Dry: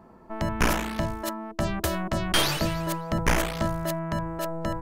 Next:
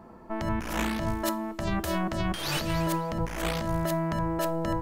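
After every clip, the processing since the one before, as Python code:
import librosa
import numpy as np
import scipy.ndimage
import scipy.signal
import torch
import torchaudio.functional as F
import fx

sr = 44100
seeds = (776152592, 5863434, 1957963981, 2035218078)

y = fx.over_compress(x, sr, threshold_db=-29.0, ratio=-1.0)
y = fx.rev_double_slope(y, sr, seeds[0], early_s=0.31, late_s=2.7, knee_db=-19, drr_db=13.5)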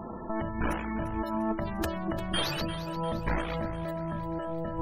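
y = fx.spec_gate(x, sr, threshold_db=-20, keep='strong')
y = fx.over_compress(y, sr, threshold_db=-36.0, ratio=-1.0)
y = fx.echo_feedback(y, sr, ms=348, feedback_pct=54, wet_db=-13)
y = y * librosa.db_to_amplitude(3.5)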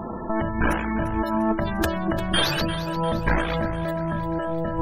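y = fx.small_body(x, sr, hz=(1600.0, 3500.0), ring_ms=45, db=10)
y = y * librosa.db_to_amplitude(7.5)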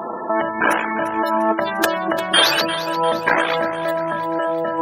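y = scipy.signal.sosfilt(scipy.signal.butter(2, 440.0, 'highpass', fs=sr, output='sos'), x)
y = y * librosa.db_to_amplitude(8.5)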